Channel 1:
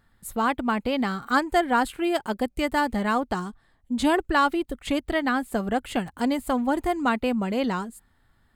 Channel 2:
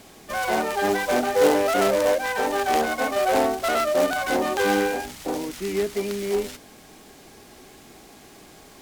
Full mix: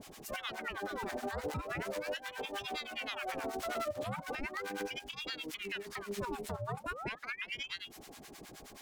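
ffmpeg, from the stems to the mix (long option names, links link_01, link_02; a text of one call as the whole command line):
ffmpeg -i stem1.wav -i stem2.wav -filter_complex "[0:a]equalizer=frequency=130:width=5.7:gain=-11.5,flanger=delay=2.5:depth=7.9:regen=-70:speed=0.25:shape=triangular,aeval=exprs='val(0)*sin(2*PI*1700*n/s+1700*0.8/0.38*sin(2*PI*0.38*n/s))':channel_layout=same,volume=-1.5dB,asplit=2[link_01][link_02];[1:a]volume=0dB[link_03];[link_02]apad=whole_len=388947[link_04];[link_03][link_04]sidechaincompress=threshold=-47dB:ratio=4:attack=5.6:release=153[link_05];[link_01][link_05]amix=inputs=2:normalize=0,acrossover=split=820[link_06][link_07];[link_06]aeval=exprs='val(0)*(1-1/2+1/2*cos(2*PI*9.5*n/s))':channel_layout=same[link_08];[link_07]aeval=exprs='val(0)*(1-1/2-1/2*cos(2*PI*9.5*n/s))':channel_layout=same[link_09];[link_08][link_09]amix=inputs=2:normalize=0,alimiter=level_in=4.5dB:limit=-24dB:level=0:latency=1:release=197,volume=-4.5dB" out.wav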